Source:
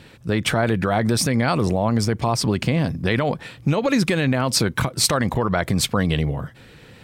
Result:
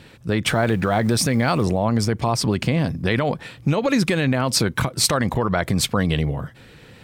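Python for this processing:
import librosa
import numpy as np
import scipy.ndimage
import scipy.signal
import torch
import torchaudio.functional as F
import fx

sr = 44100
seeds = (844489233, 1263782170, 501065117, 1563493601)

y = fx.law_mismatch(x, sr, coded='mu', at=(0.46, 1.63))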